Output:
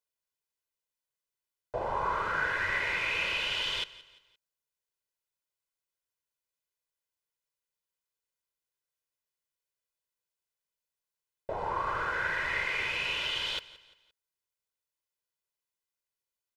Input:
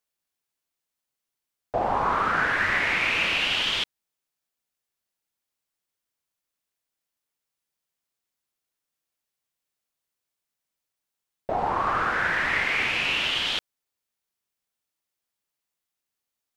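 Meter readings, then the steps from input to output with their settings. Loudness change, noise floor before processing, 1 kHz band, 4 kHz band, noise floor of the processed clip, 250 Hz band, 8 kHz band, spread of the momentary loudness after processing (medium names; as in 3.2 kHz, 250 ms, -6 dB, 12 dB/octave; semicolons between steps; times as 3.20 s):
-7.0 dB, under -85 dBFS, -7.5 dB, -6.5 dB, under -85 dBFS, -11.5 dB, -7.0 dB, 8 LU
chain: comb 2 ms, depth 63%; on a send: feedback delay 173 ms, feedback 40%, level -19 dB; on the sum: trim -8.5 dB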